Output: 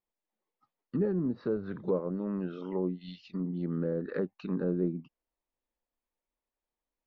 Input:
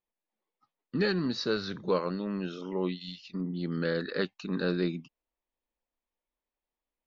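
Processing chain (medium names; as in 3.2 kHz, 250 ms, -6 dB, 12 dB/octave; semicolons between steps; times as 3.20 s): low-pass that closes with the level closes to 590 Hz, closed at -26.5 dBFS; treble shelf 3.6 kHz -11 dB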